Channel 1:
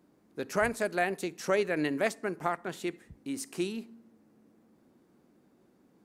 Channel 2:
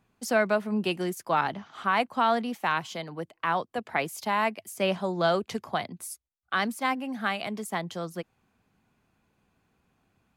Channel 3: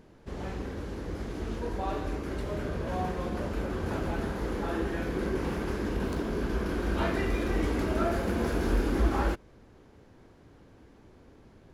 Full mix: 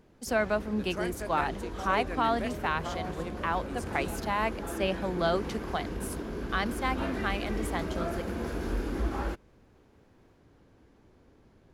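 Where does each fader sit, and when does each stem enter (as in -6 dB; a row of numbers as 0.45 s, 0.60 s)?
-8.5 dB, -3.5 dB, -5.0 dB; 0.40 s, 0.00 s, 0.00 s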